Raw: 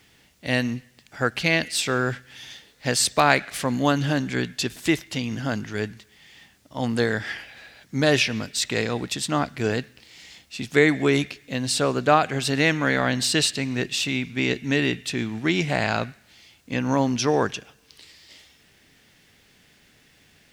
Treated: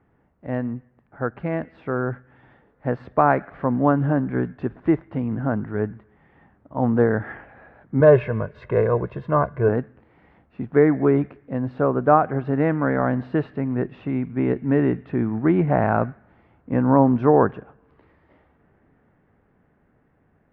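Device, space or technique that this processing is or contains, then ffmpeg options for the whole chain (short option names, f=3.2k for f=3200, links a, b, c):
action camera in a waterproof case: -filter_complex "[0:a]asettb=1/sr,asplit=3[a][b][c];[a]atrim=end=8.004[d];[b]atrim=start=8:end=9.69,asetpts=PTS-STARTPTS,afade=t=in:d=0.004:c=qsin,afade=t=out:st=1.686:d=0.004:c=qsin,aecho=1:1:1.9:0.81,atrim=end_sample=74529[e];[c]atrim=start=9.686[f];[d][e]acrossfade=d=0.004:c1=hsin:c2=qsin[g];[g][f]acrossfade=d=0.004:c1=qsin:c2=hsin,lowpass=f=1.3k:w=0.5412,lowpass=f=1.3k:w=1.3066,dynaudnorm=f=300:g=17:m=11.5dB,volume=-1dB" -ar 22050 -c:a aac -b:a 96k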